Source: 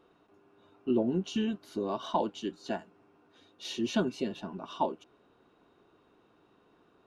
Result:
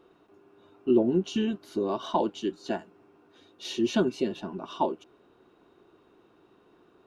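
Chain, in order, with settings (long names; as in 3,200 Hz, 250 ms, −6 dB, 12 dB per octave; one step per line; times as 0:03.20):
parametric band 360 Hz +6 dB 0.36 octaves
level +2.5 dB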